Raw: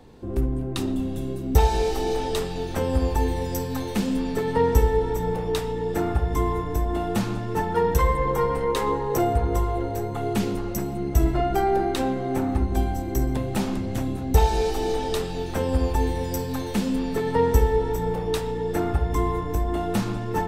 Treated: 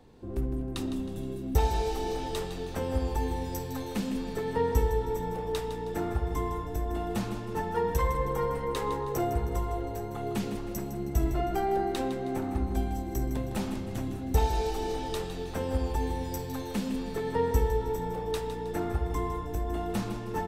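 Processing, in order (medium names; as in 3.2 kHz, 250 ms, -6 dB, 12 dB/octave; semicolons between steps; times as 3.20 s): feedback delay 158 ms, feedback 43%, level -10.5 dB; trim -7 dB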